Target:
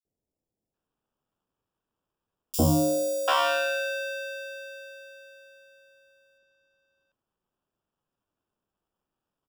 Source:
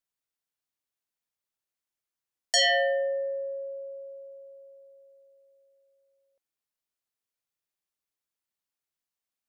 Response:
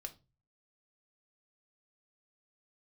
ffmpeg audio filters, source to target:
-filter_complex "[0:a]acrusher=samples=21:mix=1:aa=0.000001,acrossover=split=660|5000[link_01][link_02][link_03];[link_01]adelay=50[link_04];[link_02]adelay=740[link_05];[link_04][link_05][link_03]amix=inputs=3:normalize=0,volume=4dB"

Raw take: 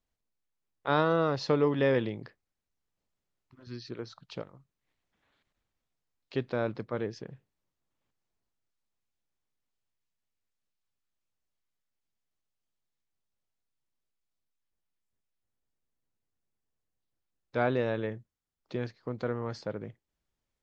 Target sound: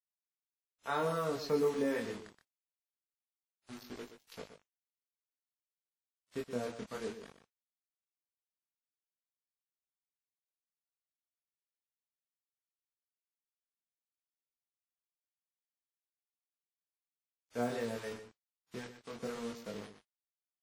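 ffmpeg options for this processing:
ffmpeg -i in.wav -filter_complex "[0:a]highpass=40,equalizer=frequency=3200:width=4.1:gain=-8,aecho=1:1:4.4:0.49,adynamicequalizer=threshold=0.00112:dfrequency=110:dqfactor=6.1:tfrequency=110:tqfactor=6.1:attack=5:release=100:ratio=0.375:range=1.5:mode=cutabove:tftype=bell,acrossover=split=640[link_01][link_02];[link_01]aeval=exprs='val(0)*(1-0.7/2+0.7/2*cos(2*PI*3.8*n/s))':channel_layout=same[link_03];[link_02]aeval=exprs='val(0)*(1-0.7/2-0.7/2*cos(2*PI*3.8*n/s))':channel_layout=same[link_04];[link_03][link_04]amix=inputs=2:normalize=0,acrusher=bits=6:mix=0:aa=0.000001,flanger=delay=20:depth=5.5:speed=0.25,aecho=1:1:123:0.299,volume=-2.5dB" -ar 44100 -c:a wmav2 -b:a 32k out.wma

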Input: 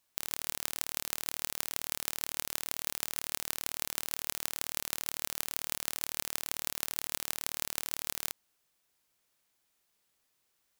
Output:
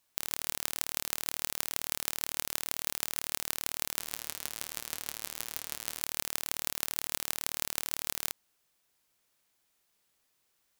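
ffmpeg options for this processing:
ffmpeg -i in.wav -filter_complex "[0:a]asplit=3[link_01][link_02][link_03];[link_01]afade=type=out:start_time=3.99:duration=0.02[link_04];[link_02]flanger=delay=4.5:depth=7.5:regen=-62:speed=1.6:shape=triangular,afade=type=in:start_time=3.99:duration=0.02,afade=type=out:start_time=6:duration=0.02[link_05];[link_03]afade=type=in:start_time=6:duration=0.02[link_06];[link_04][link_05][link_06]amix=inputs=3:normalize=0,volume=1.5dB" out.wav

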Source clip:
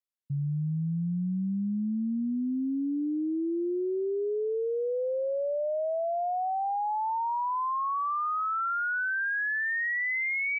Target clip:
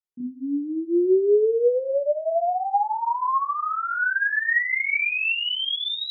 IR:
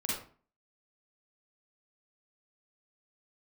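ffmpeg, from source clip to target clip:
-filter_complex "[0:a]dynaudnorm=framelen=270:gausssize=9:maxgain=6dB[link_01];[1:a]atrim=start_sample=2205[link_02];[link_01][link_02]afir=irnorm=-1:irlink=0,asetrate=76440,aresample=44100,volume=-5dB"

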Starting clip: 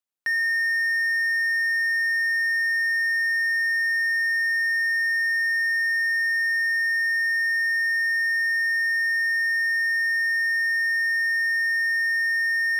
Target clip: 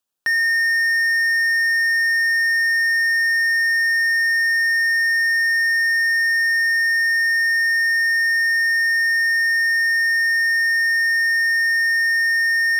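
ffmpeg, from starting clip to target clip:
ffmpeg -i in.wav -af "equalizer=frequency=2100:width=5.4:gain=-12,volume=9dB" out.wav

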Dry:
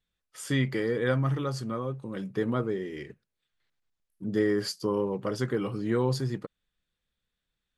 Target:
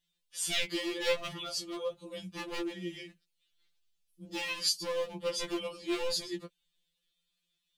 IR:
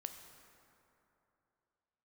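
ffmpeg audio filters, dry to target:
-af "aeval=exprs='0.0794*(abs(mod(val(0)/0.0794+3,4)-2)-1)':channel_layout=same,highshelf=frequency=2200:width_type=q:width=1.5:gain=9.5,afftfilt=real='re*2.83*eq(mod(b,8),0)':imag='im*2.83*eq(mod(b,8),0)':win_size=2048:overlap=0.75,volume=-2dB"

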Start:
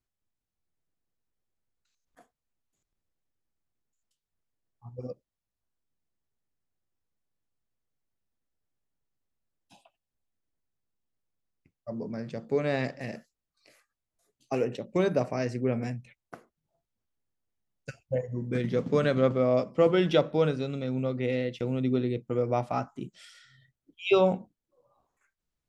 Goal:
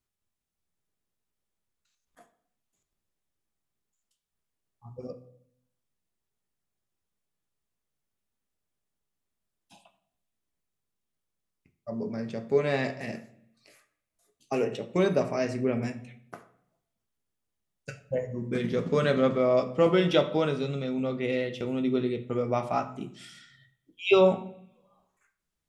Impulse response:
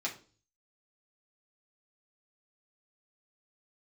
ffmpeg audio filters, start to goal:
-filter_complex "[0:a]asplit=2[link_01][link_02];[1:a]atrim=start_sample=2205,asetrate=22491,aresample=44100,highshelf=frequency=4800:gain=12[link_03];[link_02][link_03]afir=irnorm=-1:irlink=0,volume=-11.5dB[link_04];[link_01][link_04]amix=inputs=2:normalize=0,volume=-1.5dB"

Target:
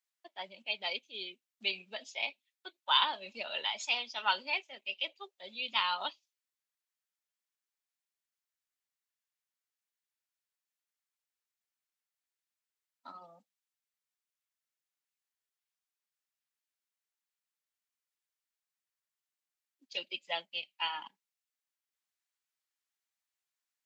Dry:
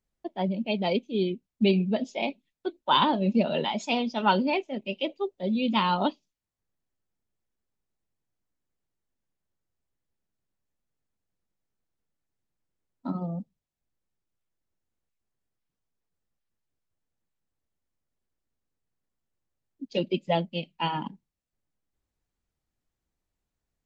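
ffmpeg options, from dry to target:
ffmpeg -i in.wav -af "highpass=1500" out.wav

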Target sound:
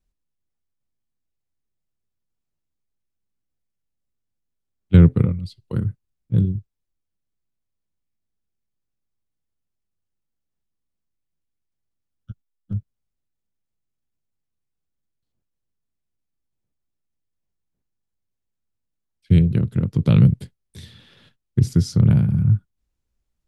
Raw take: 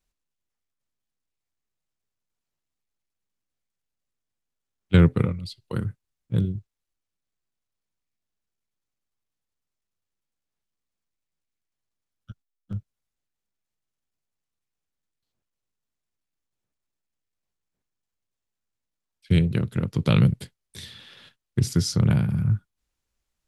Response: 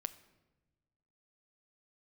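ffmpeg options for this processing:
-af "lowshelf=frequency=440:gain=12,volume=-5.5dB"

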